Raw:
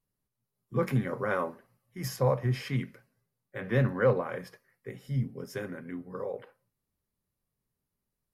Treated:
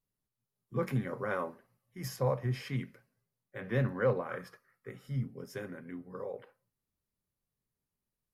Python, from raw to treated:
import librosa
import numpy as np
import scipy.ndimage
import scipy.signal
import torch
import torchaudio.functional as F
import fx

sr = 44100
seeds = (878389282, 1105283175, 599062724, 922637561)

y = fx.peak_eq(x, sr, hz=1300.0, db=13.5, octaves=0.39, at=(4.3, 5.29))
y = y * 10.0 ** (-4.5 / 20.0)